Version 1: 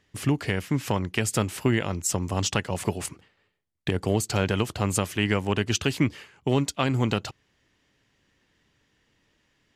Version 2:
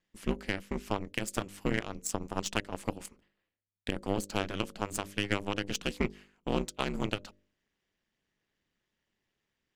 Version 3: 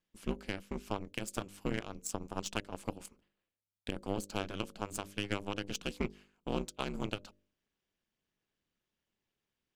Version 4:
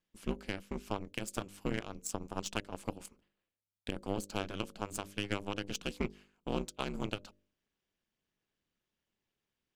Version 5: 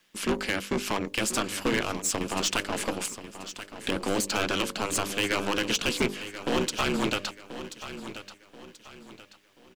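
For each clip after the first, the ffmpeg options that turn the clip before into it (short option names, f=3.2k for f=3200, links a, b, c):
-af "bandreject=f=50.08:t=h:w=4,bandreject=f=100.16:t=h:w=4,bandreject=f=150.24:t=h:w=4,bandreject=f=200.32:t=h:w=4,bandreject=f=250.4:t=h:w=4,bandreject=f=300.48:t=h:w=4,bandreject=f=350.56:t=h:w=4,bandreject=f=400.64:t=h:w=4,bandreject=f=450.72:t=h:w=4,bandreject=f=500.8:t=h:w=4,aeval=exprs='0.398*(cos(1*acos(clip(val(0)/0.398,-1,1)))-cos(1*PI/2))+0.0355*(cos(7*acos(clip(val(0)/0.398,-1,1)))-cos(7*PI/2))':c=same,aeval=exprs='val(0)*sin(2*PI*100*n/s)':c=same,volume=-3dB"
-af "equalizer=f=1.9k:w=5.8:g=-7,volume=-4.5dB"
-af anull
-filter_complex "[0:a]asplit=2[a][b];[b]highpass=f=720:p=1,volume=28dB,asoftclip=type=tanh:threshold=-17dB[c];[a][c]amix=inputs=2:normalize=0,lowpass=f=6.5k:p=1,volume=-6dB,acrossover=split=470|1100[d][e][f];[e]aeval=exprs='max(val(0),0)':c=same[g];[d][g][f]amix=inputs=3:normalize=0,aecho=1:1:1033|2066|3099|4132:0.237|0.0854|0.0307|0.0111,volume=3dB"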